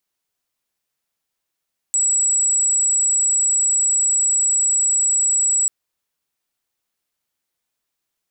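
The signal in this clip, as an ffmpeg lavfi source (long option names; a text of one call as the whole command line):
ffmpeg -f lavfi -i "aevalsrc='0.188*sin(2*PI*7810*t)':duration=3.74:sample_rate=44100" out.wav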